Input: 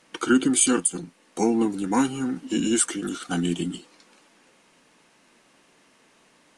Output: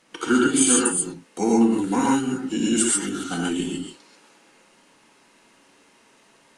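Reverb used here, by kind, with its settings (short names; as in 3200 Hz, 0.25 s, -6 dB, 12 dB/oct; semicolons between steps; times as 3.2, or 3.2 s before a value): non-linear reverb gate 0.16 s rising, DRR -3 dB; gain -2 dB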